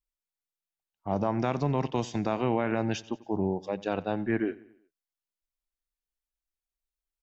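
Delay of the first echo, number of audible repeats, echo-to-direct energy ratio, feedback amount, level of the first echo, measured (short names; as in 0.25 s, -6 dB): 91 ms, 3, -19.5 dB, 50%, -20.5 dB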